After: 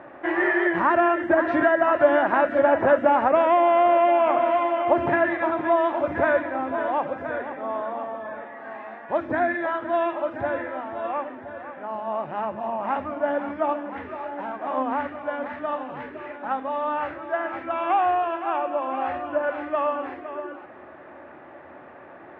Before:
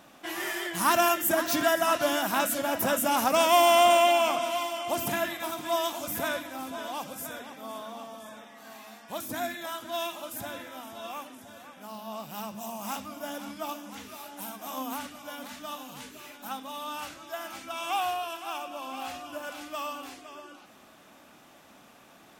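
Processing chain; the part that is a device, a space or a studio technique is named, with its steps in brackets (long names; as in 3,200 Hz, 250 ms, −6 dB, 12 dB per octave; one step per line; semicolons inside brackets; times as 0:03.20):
bass amplifier (downward compressor 5 to 1, threshold −27 dBFS, peak gain reduction 10 dB; loudspeaker in its box 75–2,000 Hz, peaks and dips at 79 Hz +9 dB, 200 Hz −8 dB, 360 Hz +9 dB, 570 Hz +8 dB, 880 Hz +4 dB, 1,800 Hz +7 dB)
level +7.5 dB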